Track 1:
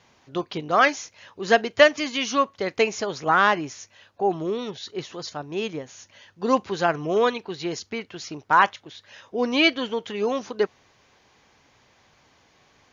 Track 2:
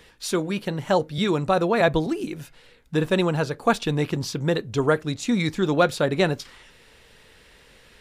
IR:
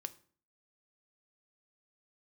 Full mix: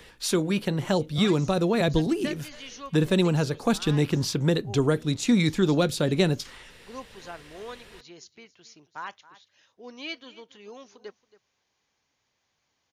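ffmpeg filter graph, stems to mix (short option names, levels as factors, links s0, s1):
-filter_complex "[0:a]highshelf=f=3300:g=10,adelay=450,volume=0.1,asplit=2[s0][s1];[s1]volume=0.119[s2];[1:a]volume=1.26[s3];[s2]aecho=0:1:275:1[s4];[s0][s3][s4]amix=inputs=3:normalize=0,acrossover=split=390|3000[s5][s6][s7];[s6]acompressor=threshold=0.0251:ratio=3[s8];[s5][s8][s7]amix=inputs=3:normalize=0"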